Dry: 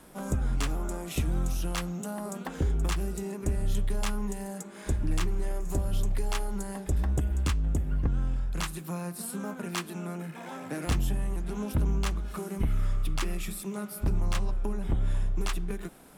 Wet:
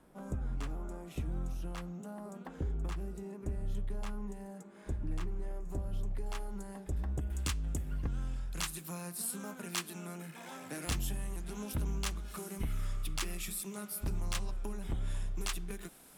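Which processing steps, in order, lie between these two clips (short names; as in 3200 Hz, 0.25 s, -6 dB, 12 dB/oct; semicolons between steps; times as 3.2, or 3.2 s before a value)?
high shelf 2200 Hz -9.5 dB, from 6.26 s -4 dB, from 7.3 s +10 dB; gain -8.5 dB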